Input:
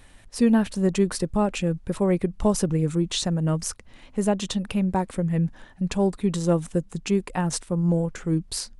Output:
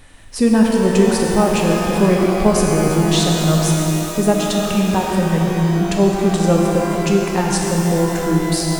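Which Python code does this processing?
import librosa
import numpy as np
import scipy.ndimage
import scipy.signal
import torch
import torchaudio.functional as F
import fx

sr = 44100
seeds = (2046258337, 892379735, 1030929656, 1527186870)

y = fx.rev_shimmer(x, sr, seeds[0], rt60_s=3.6, semitones=12, shimmer_db=-8, drr_db=-1.0)
y = y * librosa.db_to_amplitude(5.5)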